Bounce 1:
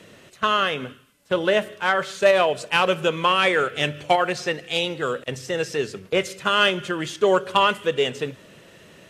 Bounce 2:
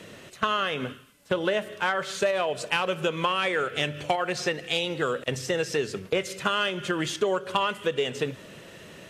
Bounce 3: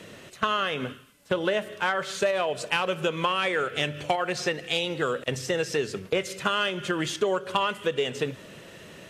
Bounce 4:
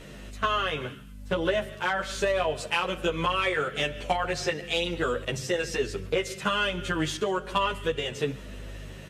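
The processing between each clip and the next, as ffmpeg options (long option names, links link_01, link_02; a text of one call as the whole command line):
ffmpeg -i in.wav -af "acompressor=threshold=-25dB:ratio=6,volume=2.5dB" out.wav
ffmpeg -i in.wav -af anull out.wav
ffmpeg -i in.wav -filter_complex "[0:a]aeval=exprs='val(0)+0.01*(sin(2*PI*50*n/s)+sin(2*PI*2*50*n/s)/2+sin(2*PI*3*50*n/s)/3+sin(2*PI*4*50*n/s)/4+sin(2*PI*5*50*n/s)/5)':channel_layout=same,aecho=1:1:137:0.0708,asplit=2[link_01][link_02];[link_02]adelay=11.1,afreqshift=-1.1[link_03];[link_01][link_03]amix=inputs=2:normalize=1,volume=2dB" out.wav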